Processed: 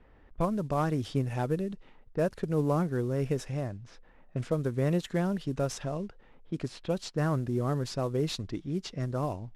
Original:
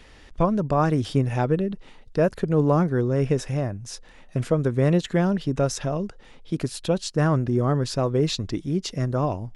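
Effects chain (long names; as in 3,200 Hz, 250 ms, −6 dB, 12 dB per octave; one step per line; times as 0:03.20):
variable-slope delta modulation 64 kbit/s
low-pass that shuts in the quiet parts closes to 1,200 Hz, open at −19 dBFS
level −7.5 dB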